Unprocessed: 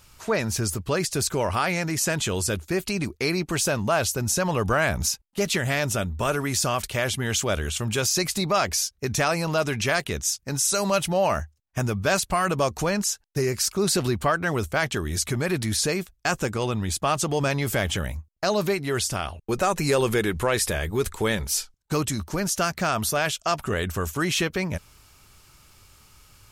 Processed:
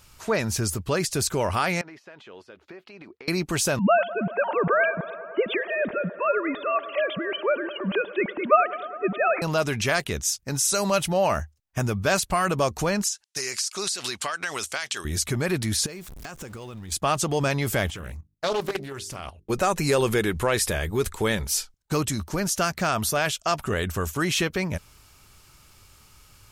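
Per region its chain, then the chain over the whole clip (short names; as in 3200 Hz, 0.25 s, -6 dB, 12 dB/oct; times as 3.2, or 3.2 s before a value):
1.81–3.28 HPF 380 Hz + compressor 12:1, threshold -37 dBFS + air absorption 320 m
3.79–9.42 sine-wave speech + band-limited delay 0.103 s, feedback 83%, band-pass 760 Hz, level -15 dB
13.08–15.05 weighting filter ITU-R 468 + compressor 10:1, threshold -24 dBFS
15.86–16.92 zero-crossing step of -34.5 dBFS + compressor 5:1, threshold -36 dBFS
17.9–19.5 notches 50/100/150/200/250/300/350/400 Hz + level quantiser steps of 12 dB + Doppler distortion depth 0.58 ms
whole clip: dry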